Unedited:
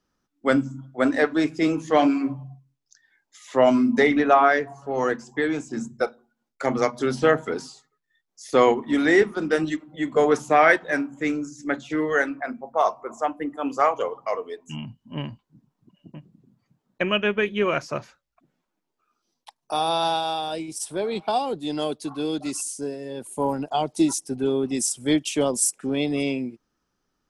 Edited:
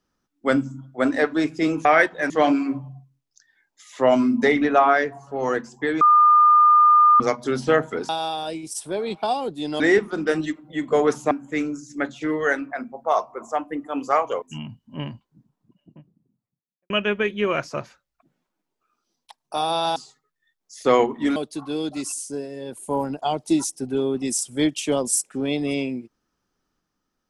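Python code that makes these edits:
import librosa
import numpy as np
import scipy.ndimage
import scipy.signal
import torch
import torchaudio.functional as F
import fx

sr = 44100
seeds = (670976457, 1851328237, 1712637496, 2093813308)

y = fx.studio_fade_out(x, sr, start_s=15.26, length_s=1.82)
y = fx.edit(y, sr, fx.bleep(start_s=5.56, length_s=1.19, hz=1210.0, db=-10.5),
    fx.swap(start_s=7.64, length_s=1.4, other_s=20.14, other_length_s=1.71),
    fx.move(start_s=10.55, length_s=0.45, to_s=1.85),
    fx.cut(start_s=14.11, length_s=0.49), tone=tone)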